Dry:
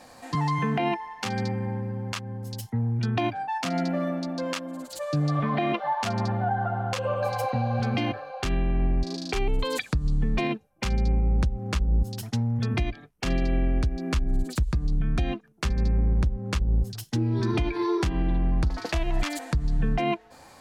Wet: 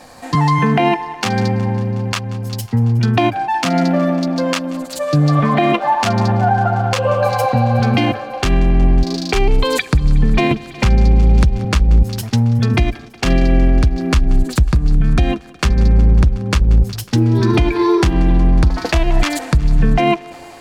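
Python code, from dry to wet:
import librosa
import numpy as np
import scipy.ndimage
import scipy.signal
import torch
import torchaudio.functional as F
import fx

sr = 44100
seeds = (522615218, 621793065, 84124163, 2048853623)

p1 = fx.backlash(x, sr, play_db=-36.5)
p2 = x + F.gain(torch.from_numpy(p1), -6.5).numpy()
p3 = fx.echo_thinned(p2, sr, ms=183, feedback_pct=81, hz=180.0, wet_db=-21.0)
p4 = fx.band_squash(p3, sr, depth_pct=70, at=(10.51, 11.65))
y = F.gain(torch.from_numpy(p4), 8.5).numpy()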